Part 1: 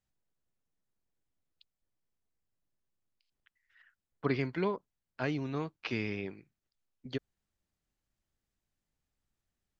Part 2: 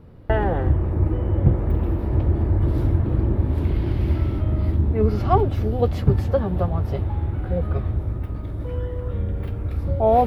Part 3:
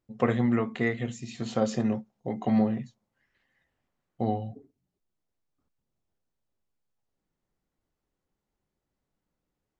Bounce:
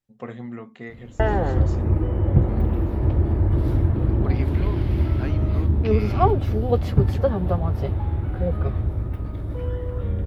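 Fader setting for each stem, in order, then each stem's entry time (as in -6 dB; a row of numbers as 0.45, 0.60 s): -2.0, 0.0, -10.0 dB; 0.00, 0.90, 0.00 s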